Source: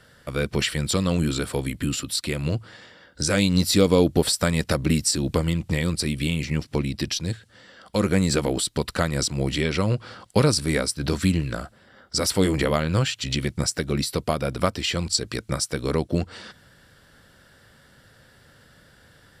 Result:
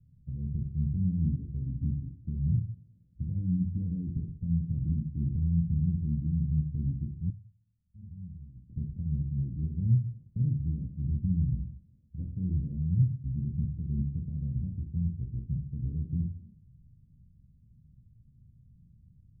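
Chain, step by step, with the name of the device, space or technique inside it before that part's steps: club heard from the street (peak limiter -15.5 dBFS, peak gain reduction 10 dB; low-pass 160 Hz 24 dB/octave; reverberation RT60 0.60 s, pre-delay 19 ms, DRR 2 dB); 7.30–8.70 s: amplifier tone stack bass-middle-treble 6-0-2

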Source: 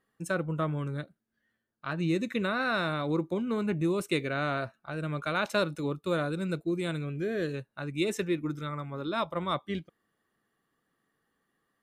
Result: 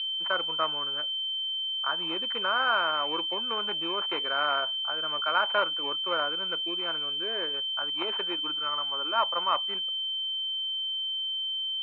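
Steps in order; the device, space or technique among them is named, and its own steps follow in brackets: toy sound module (decimation joined by straight lines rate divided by 4×; class-D stage that switches slowly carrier 3.1 kHz; cabinet simulation 760–4200 Hz, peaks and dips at 940 Hz +7 dB, 1.4 kHz +6 dB, 2.6 kHz +9 dB, 3.9 kHz +4 dB); trim +4.5 dB

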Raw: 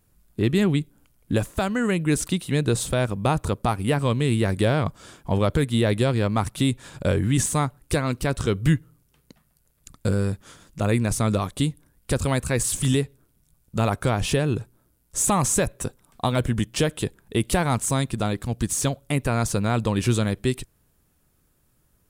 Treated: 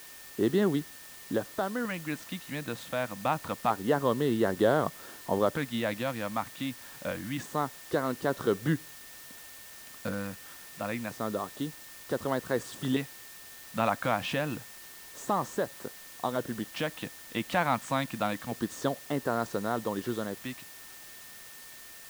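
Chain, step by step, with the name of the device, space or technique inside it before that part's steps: shortwave radio (band-pass 280–2800 Hz; tremolo 0.22 Hz, depth 50%; LFO notch square 0.27 Hz 400–2400 Hz; whistle 1.8 kHz -55 dBFS; white noise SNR 16 dB)

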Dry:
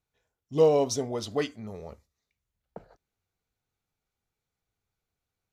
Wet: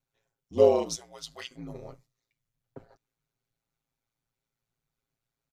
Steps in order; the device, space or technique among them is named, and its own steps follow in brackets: 0.95–1.51 s: amplifier tone stack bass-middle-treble 10-0-10; ring-modulated robot voice (ring modulator 57 Hz; comb 7.4 ms, depth 68%)

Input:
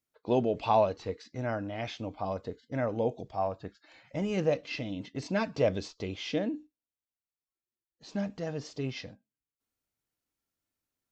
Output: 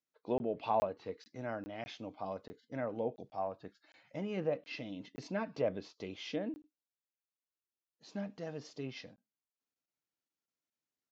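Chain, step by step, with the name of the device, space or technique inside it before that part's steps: low-pass that closes with the level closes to 2 kHz, closed at -24.5 dBFS; call with lost packets (high-pass 150 Hz 12 dB/octave; resampled via 16 kHz; lost packets of 20 ms random); trim -6.5 dB

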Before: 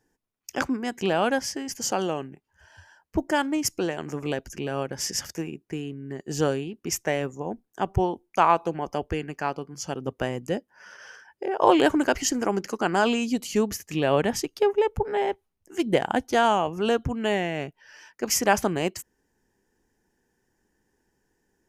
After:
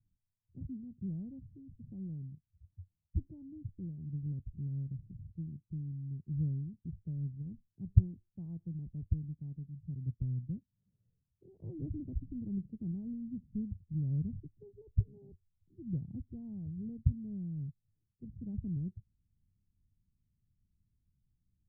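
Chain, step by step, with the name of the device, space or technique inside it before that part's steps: the neighbour's flat through the wall (low-pass 150 Hz 24 dB/octave; peaking EQ 100 Hz +4.5 dB 0.53 oct); 11.80–12.92 s: tilt shelf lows +3 dB, about 1.3 kHz; trim +1.5 dB

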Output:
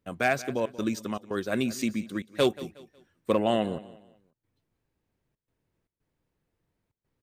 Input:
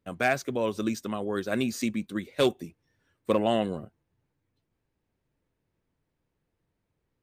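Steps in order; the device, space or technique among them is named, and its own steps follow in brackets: trance gate with a delay (trance gate "xxxxx.xxx.xx" 115 bpm -24 dB; feedback delay 182 ms, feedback 33%, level -17.5 dB)

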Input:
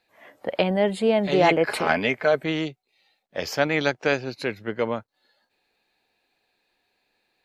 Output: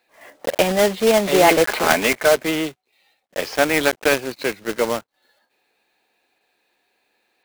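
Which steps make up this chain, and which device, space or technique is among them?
early digital voice recorder (band-pass 230–3900 Hz; block-companded coder 3-bit); trim +5 dB

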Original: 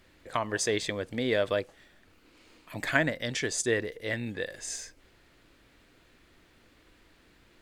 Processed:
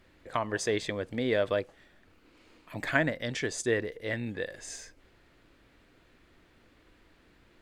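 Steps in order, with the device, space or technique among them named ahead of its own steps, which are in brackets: behind a face mask (treble shelf 3.4 kHz -7 dB)

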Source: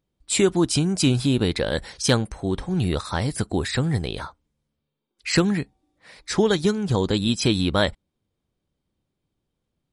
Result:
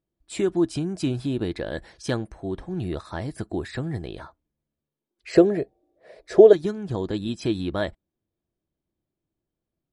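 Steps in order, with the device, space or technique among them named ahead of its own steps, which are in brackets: inside a helmet (treble shelf 3.1 kHz -9 dB; small resonant body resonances 340/650/1700 Hz, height 8 dB); 5.28–6.53 s: high-order bell 510 Hz +16 dB 1.1 oct; trim -7.5 dB

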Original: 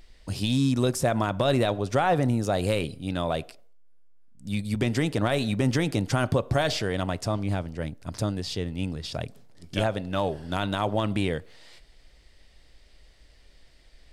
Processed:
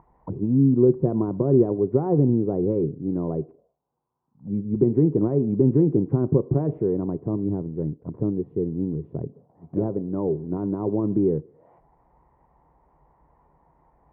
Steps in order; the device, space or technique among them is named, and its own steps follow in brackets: envelope filter bass rig (touch-sensitive low-pass 380–1000 Hz down, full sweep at -31 dBFS; cabinet simulation 69–2000 Hz, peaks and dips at 91 Hz -5 dB, 150 Hz +8 dB, 600 Hz -6 dB, 1 kHz +9 dB, 1.6 kHz -4 dB)

